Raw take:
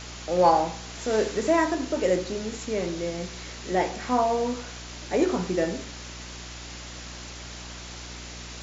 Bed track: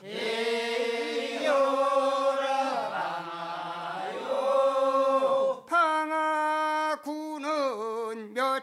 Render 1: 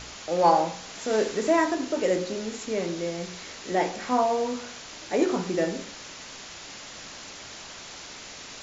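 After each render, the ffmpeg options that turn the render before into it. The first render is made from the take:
-af "bandreject=f=60:t=h:w=4,bandreject=f=120:t=h:w=4,bandreject=f=180:t=h:w=4,bandreject=f=240:t=h:w=4,bandreject=f=300:t=h:w=4,bandreject=f=360:t=h:w=4,bandreject=f=420:t=h:w=4,bandreject=f=480:t=h:w=4,bandreject=f=540:t=h:w=4"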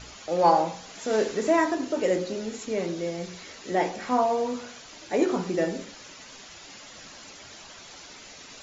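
-af "afftdn=nr=8:nf=-43"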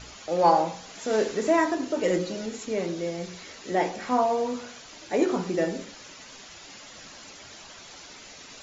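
-filter_complex "[0:a]asettb=1/sr,asplit=3[s0][s1][s2];[s0]atrim=end=2.034[s3];[s1]atrim=start=2.03:end=2.46,asetpts=PTS-STARTPTS,afade=t=in:d=0.004:c=qsin,afade=t=out:st=0.426:d=0.004:c=qsin,aecho=1:1:6.2:0.65,atrim=end_sample=18963[s4];[s2]atrim=start=2.456[s5];[s3][s4]acrossfade=d=0.004:c1=hsin:c2=qsin[s6];[s6][s5]acrossfade=d=0.004:c1=qsin:c2=hsin"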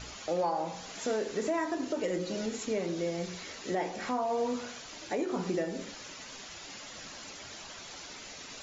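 -af "acompressor=threshold=0.0282:ratio=1.5,alimiter=limit=0.0794:level=0:latency=1:release=252"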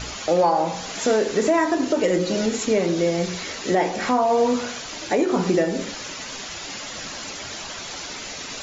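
-af "volume=3.98"

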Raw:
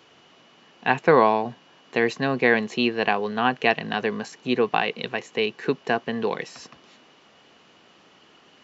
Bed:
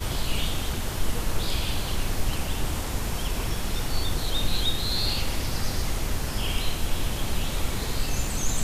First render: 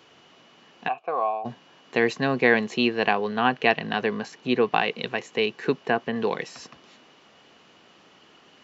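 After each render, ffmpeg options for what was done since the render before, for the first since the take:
-filter_complex "[0:a]asplit=3[s0][s1][s2];[s0]afade=t=out:st=0.87:d=0.02[s3];[s1]asplit=3[s4][s5][s6];[s4]bandpass=f=730:t=q:w=8,volume=1[s7];[s5]bandpass=f=1090:t=q:w=8,volume=0.501[s8];[s6]bandpass=f=2440:t=q:w=8,volume=0.355[s9];[s7][s8][s9]amix=inputs=3:normalize=0,afade=t=in:st=0.87:d=0.02,afade=t=out:st=1.44:d=0.02[s10];[s2]afade=t=in:st=1.44:d=0.02[s11];[s3][s10][s11]amix=inputs=3:normalize=0,asettb=1/sr,asplit=3[s12][s13][s14];[s12]atrim=end=3.124[s15];[s13]atrim=start=3.12:end=4.73,asetpts=PTS-STARTPTS,afade=t=in:d=0.004:c=qsin,afade=t=out:st=1.606:d=0.004:c=qsin,lowpass=5900[s16];[s14]atrim=start=4.726[s17];[s15][s16]acrossfade=d=0.004:c1=hsin:c2=qsin[s18];[s18][s17]acrossfade=d=0.004:c1=qsin:c2=hsin,asettb=1/sr,asplit=3[s19][s20][s21];[s19]atrim=end=5.724[s22];[s20]atrim=start=5.72:end=6.16,asetpts=PTS-STARTPTS,afade=t=in:d=0.004:c=qsin,afade=t=out:st=0.436:d=0.004:c=qsin,acrossover=split=3500[s23][s24];[s24]acompressor=threshold=0.002:ratio=4:attack=1:release=60[s25];[s23][s25]amix=inputs=2:normalize=0[s26];[s21]atrim=start=6.156[s27];[s22][s26]acrossfade=d=0.004:c1=hsin:c2=qsin[s28];[s28][s27]acrossfade=d=0.004:c1=qsin:c2=hsin"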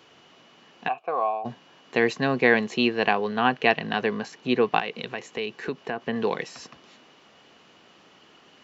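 -filter_complex "[0:a]asettb=1/sr,asplit=3[s0][s1][s2];[s0]atrim=end=4.794[s3];[s1]atrim=start=4.79:end=6.02,asetpts=PTS-STARTPTS,afade=t=in:d=0.004:c=qsin,afade=t=out:st=1.226:d=0.004:c=qsin,acompressor=threshold=0.0316:ratio=2:attack=3.2:release=140:knee=1:detection=peak[s4];[s2]atrim=start=6.016[s5];[s3][s4]acrossfade=d=0.004:c1=hsin:c2=qsin[s6];[s6][s5]acrossfade=d=0.004:c1=qsin:c2=hsin"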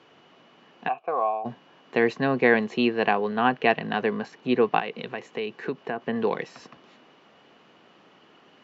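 -af "highpass=110,aemphasis=mode=reproduction:type=75fm"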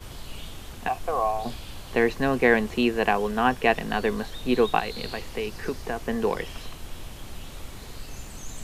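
-filter_complex "[1:a]volume=0.251[s0];[0:a][s0]amix=inputs=2:normalize=0"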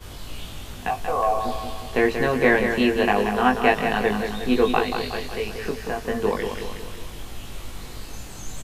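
-filter_complex "[0:a]asplit=2[s0][s1];[s1]adelay=20,volume=0.75[s2];[s0][s2]amix=inputs=2:normalize=0,aecho=1:1:183|366|549|732|915|1098:0.447|0.228|0.116|0.0593|0.0302|0.0154"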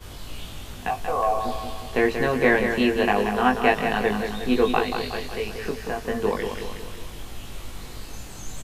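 -af "volume=0.891"

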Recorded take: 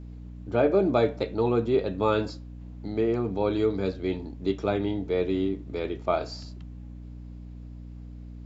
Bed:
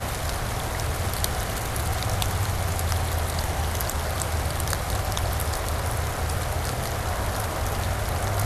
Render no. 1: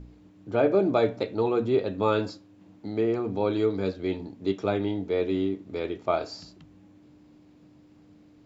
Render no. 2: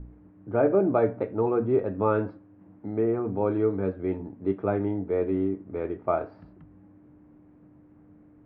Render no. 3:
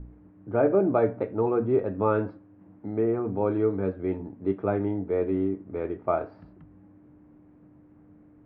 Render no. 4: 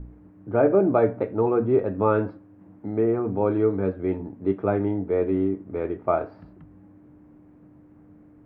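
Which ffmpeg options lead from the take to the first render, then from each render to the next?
-af "bandreject=f=60:t=h:w=4,bandreject=f=120:t=h:w=4,bandreject=f=180:t=h:w=4,bandreject=f=240:t=h:w=4"
-af "lowpass=f=1800:w=0.5412,lowpass=f=1800:w=1.3066,lowshelf=f=80:g=5.5"
-af anull
-af "volume=1.41"

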